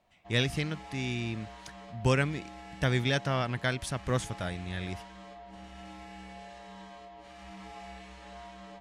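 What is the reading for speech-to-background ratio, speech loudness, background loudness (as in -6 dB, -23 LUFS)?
16.0 dB, -31.5 LUFS, -47.5 LUFS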